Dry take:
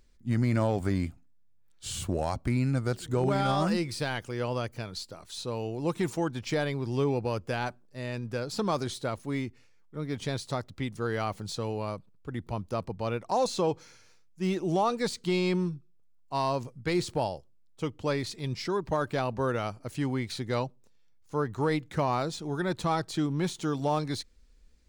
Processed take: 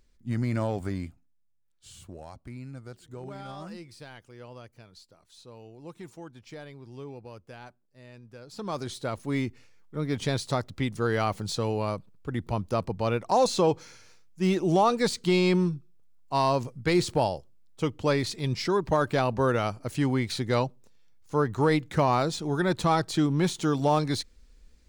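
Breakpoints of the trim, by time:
0.72 s -2 dB
1.98 s -14 dB
8.39 s -14 dB
8.74 s -3.5 dB
9.45 s +4.5 dB

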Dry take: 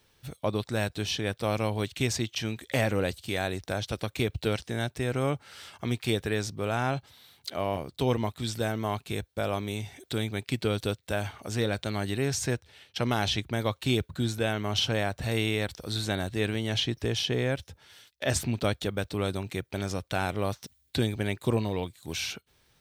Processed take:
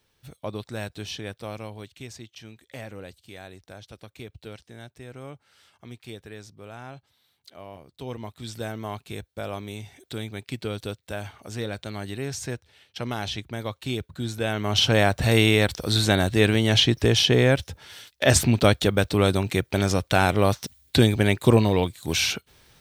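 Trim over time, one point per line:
1.18 s -4 dB
2.04 s -12.5 dB
7.80 s -12.5 dB
8.59 s -3 dB
14.13 s -3 dB
15.02 s +9.5 dB

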